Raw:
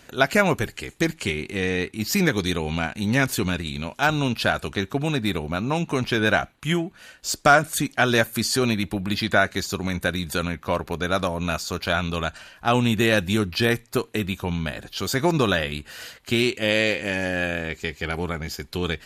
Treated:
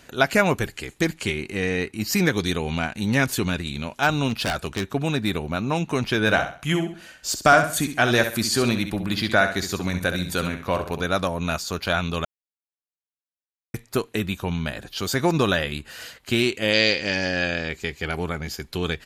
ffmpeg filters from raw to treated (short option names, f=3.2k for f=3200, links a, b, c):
-filter_complex "[0:a]asettb=1/sr,asplit=3[a][b][c];[a]atrim=end=1.384[d];[b]atrim=start=1.38:end=2.16,asetpts=PTS-STARTPTS,afade=t=in:d=0.004:c=qsin,afade=t=out:st=0.776:d=0.004:c=qsin,bandreject=f=3.5k:w=7.7[e];[c]atrim=start=2.156[f];[d][e]acrossfade=d=0.004:c1=hsin:c2=qsin[g];[g][f]acrossfade=d=0.004:c1=qsin:c2=hsin,asettb=1/sr,asplit=3[h][i][j];[h]atrim=end=4.294[k];[i]atrim=start=4.29:end=4.85,asetpts=PTS-STARTPTS,afade=t=in:d=0.004:c=qsin,afade=t=out:st=0.556:d=0.004:c=qsin,aeval=exprs='0.126*(abs(mod(val(0)/0.126+3,4)-2)-1)':c=same[l];[j]atrim=start=4.846[m];[k][l]acrossfade=d=0.004:c1=hsin:c2=qsin[n];[n][m]acrossfade=d=0.004:c1=qsin:c2=hsin,asplit=3[o][p][q];[o]afade=t=out:st=6.26:d=0.02[r];[p]aecho=1:1:66|132|198|264:0.355|0.114|0.0363|0.0116,afade=t=in:st=6.26:d=0.02,afade=t=out:st=11.04:d=0.02[s];[q]afade=t=in:st=11.04:d=0.02[t];[r][s][t]amix=inputs=3:normalize=0,asettb=1/sr,asplit=3[u][v][w];[u]atrim=end=16.734[x];[v]atrim=start=16.73:end=17.69,asetpts=PTS-STARTPTS,afade=t=in:d=0.004:c=qsin,afade=t=out:st=0.956:d=0.004:c=qsin,lowpass=f=5k:t=q:w=8.4[y];[w]atrim=start=17.686[z];[x][y]acrossfade=d=0.004:c1=hsin:c2=qsin[aa];[aa][z]acrossfade=d=0.004:c1=qsin:c2=hsin,asplit=3[ab][ac][ad];[ab]atrim=end=12.25,asetpts=PTS-STARTPTS,afade=t=out:st=12.246:d=0.004:c=hsin[ae];[ac]atrim=start=12.25:end=13.74,asetpts=PTS-STARTPTS,volume=0[af];[ad]atrim=start=13.74,asetpts=PTS-STARTPTS,afade=t=in:d=0.004:c=hsin[ag];[ae][af][ag]concat=n=3:v=0:a=1"